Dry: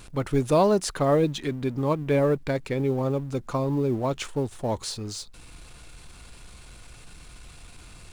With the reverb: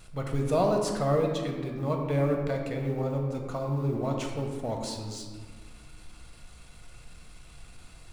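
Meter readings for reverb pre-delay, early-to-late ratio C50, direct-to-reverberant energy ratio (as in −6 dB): 4 ms, 4.0 dB, 1.5 dB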